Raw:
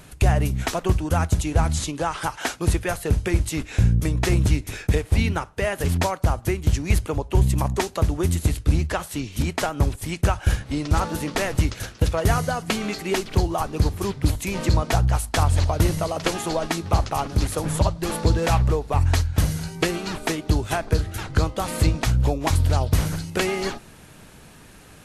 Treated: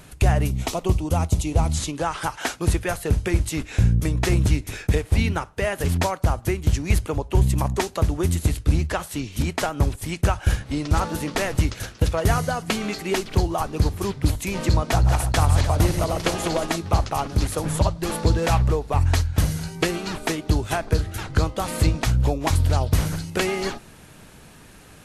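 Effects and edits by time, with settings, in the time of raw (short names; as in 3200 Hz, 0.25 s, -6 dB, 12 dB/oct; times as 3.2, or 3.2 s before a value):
0.51–1.73 bell 1600 Hz -14 dB 0.49 oct
14.73–16.76 regenerating reverse delay 0.149 s, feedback 60%, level -8 dB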